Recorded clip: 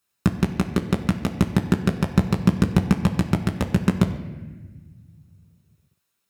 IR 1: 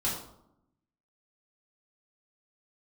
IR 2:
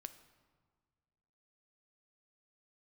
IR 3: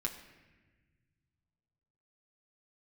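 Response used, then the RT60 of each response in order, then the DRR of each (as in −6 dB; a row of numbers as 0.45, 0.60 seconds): 3; 0.80, 1.7, 1.3 seconds; −7.0, 10.5, 0.5 decibels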